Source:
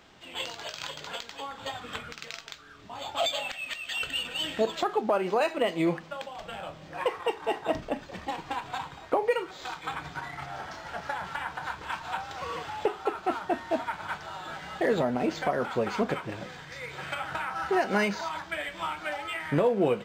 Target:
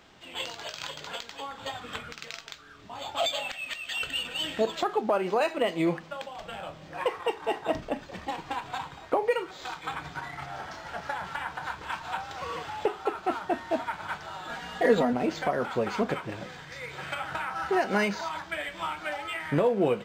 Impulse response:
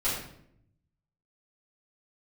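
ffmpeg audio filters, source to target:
-filter_complex "[0:a]asettb=1/sr,asplit=3[a][b][c];[a]atrim=end=14.494[d];[b]atrim=start=14.49:end=15.13,asetpts=PTS-STARTPTS,afade=t=in:d=0.004:c=qsin,afade=t=out:st=0.636:d=0.004:c=qsin,aecho=1:1:4.2:0.88,atrim=end_sample=28224[e];[c]atrim=start=15.126[f];[d][e]acrossfade=d=0.004:c1=hsin:c2=qsin[g];[g][f]acrossfade=d=0.004:c1=qsin:c2=hsin"

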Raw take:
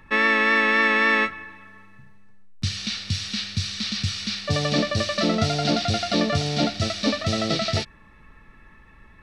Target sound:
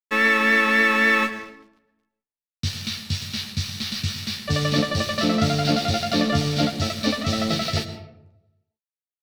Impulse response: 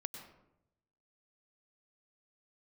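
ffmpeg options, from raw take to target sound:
-filter_complex "[0:a]aeval=exprs='sgn(val(0))*max(abs(val(0))-0.0126,0)':c=same,asplit=2[a][b];[1:a]atrim=start_sample=2205,adelay=13[c];[b][c]afir=irnorm=-1:irlink=0,volume=-2dB[d];[a][d]amix=inputs=2:normalize=0"

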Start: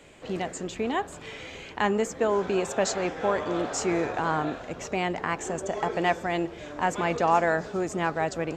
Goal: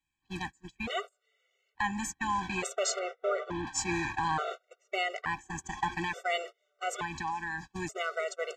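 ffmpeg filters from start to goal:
-filter_complex "[0:a]asettb=1/sr,asplit=3[a][b][c];[a]atrim=end=2.994[d];[b]atrim=start=2.99:end=3.67,asetpts=PTS-STARTPTS,afade=t=in:d=0.004:c=qsin,afade=t=out:st=0.676:d=0.004:c=qsin,lowpass=f=1.3k:p=1[e];[c]atrim=start=3.666[f];[d][e]acrossfade=d=0.004:c1=hsin:c2=qsin[g];[g][f]acrossfade=d=0.004:c1=qsin:c2=hsin,agate=range=-34dB:threshold=-30dB:ratio=16:detection=peak,equalizer=f=300:w=0.49:g=-12.5,alimiter=limit=-22dB:level=0:latency=1:release=154,asettb=1/sr,asplit=3[h][i][j];[h]atrim=end=6.984[k];[i]atrim=start=6.98:end=7.72,asetpts=PTS-STARTPTS,afade=t=in:d=0.004:c=qsin,afade=t=out:st=0.736:d=0.004:c=qsin,acompressor=threshold=-36dB:ratio=3[l];[j]atrim=start=7.716[m];[k][l]acrossfade=d=0.004:c1=hsin:c2=qsin[n];[n][m]acrossfade=d=0.004:c1=qsin:c2=hsin,afftfilt=real='re*gt(sin(2*PI*0.57*pts/sr)*(1-2*mod(floor(b*sr/1024/380),2)),0)':imag='im*gt(sin(2*PI*0.57*pts/sr)*(1-2*mod(floor(b*sr/1024/380),2)),0)':win_size=1024:overlap=0.75,volume=6dB"

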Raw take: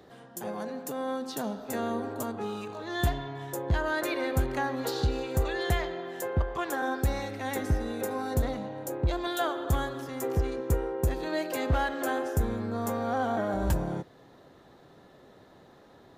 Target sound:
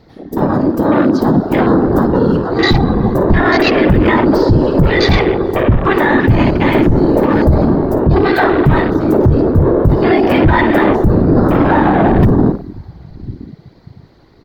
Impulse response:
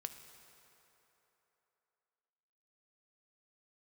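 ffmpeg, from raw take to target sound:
-filter_complex "[0:a]aeval=exprs='val(0)+0.00112*(sin(2*PI*50*n/s)+sin(2*PI*2*50*n/s)/2+sin(2*PI*3*50*n/s)/3+sin(2*PI*4*50*n/s)/4+sin(2*PI*5*50*n/s)/5)':c=same,asplit=2[a][b];[b]equalizer=f=8.9k:t=o:w=0.2:g=-5[c];[1:a]atrim=start_sample=2205,adelay=58[d];[c][d]afir=irnorm=-1:irlink=0,volume=-8.5dB[e];[a][e]amix=inputs=2:normalize=0,afftfilt=real='hypot(re,im)*cos(2*PI*random(0))':imag='hypot(re,im)*sin(2*PI*random(1))':win_size=512:overlap=0.75,asplit=2[f][g];[g]adelay=1166,volume=-25dB,highshelf=f=4k:g=-26.2[h];[f][h]amix=inputs=2:normalize=0,asetrate=49392,aresample=44100,asoftclip=type=hard:threshold=-23dB,afwtdn=0.00562,firequalizer=gain_entry='entry(350,0);entry(540,-8);entry(4700,0);entry(7900,-16);entry(13000,-7)':delay=0.05:min_phase=1,alimiter=level_in=33dB:limit=-1dB:release=50:level=0:latency=1,volume=-1dB"

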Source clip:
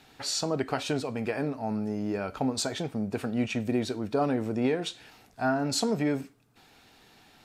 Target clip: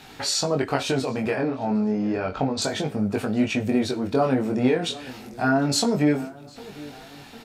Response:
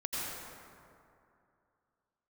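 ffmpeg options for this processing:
-filter_complex "[0:a]asettb=1/sr,asplit=3[a][b][c];[a]atrim=end=1.354[d];[b]atrim=start=1.35:end=2.62,asetpts=PTS-STARTPTS,afade=t=in:d=0.004:c=qsin,afade=t=out:st=1.266:d=0.004:c=qsin,lowpass=4.9k[e];[c]atrim=start=2.616[f];[d][e]acrossfade=d=0.004:c1=hsin:c2=qsin[g];[g][f]acrossfade=d=0.004:c1=qsin:c2=hsin,asplit=2[h][i];[i]acompressor=threshold=-43dB:ratio=6,volume=2.5dB[j];[h][j]amix=inputs=2:normalize=0,asplit=2[k][l];[l]adelay=754,lowpass=f=2.2k:p=1,volume=-19dB,asplit=2[m][n];[n]adelay=754,lowpass=f=2.2k:p=1,volume=0.51,asplit=2[o][p];[p]adelay=754,lowpass=f=2.2k:p=1,volume=0.51,asplit=2[q][r];[r]adelay=754,lowpass=f=2.2k:p=1,volume=0.51[s];[k][m][o][q][s]amix=inputs=5:normalize=0,flanger=delay=19.5:depth=4.3:speed=0.31,volume=7dB"

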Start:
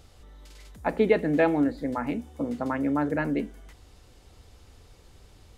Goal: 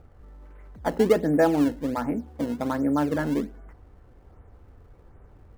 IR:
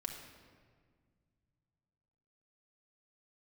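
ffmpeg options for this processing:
-filter_complex "[0:a]lowpass=f=1.7k:w=0.5412,lowpass=f=1.7k:w=1.3066,asplit=2[a][b];[b]acrusher=samples=21:mix=1:aa=0.000001:lfo=1:lforange=33.6:lforate=1.3,volume=-10dB[c];[a][c]amix=inputs=2:normalize=0"

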